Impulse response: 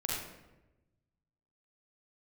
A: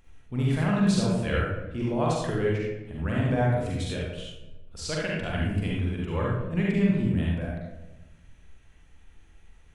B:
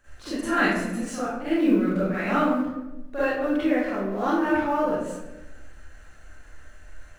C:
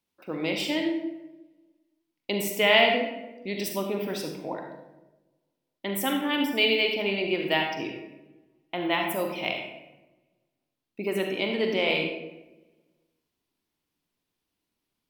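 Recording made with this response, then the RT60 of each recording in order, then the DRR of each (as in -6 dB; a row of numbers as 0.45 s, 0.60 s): A; 1.0 s, 1.0 s, 1.0 s; -4.5 dB, -14.0 dB, 2.5 dB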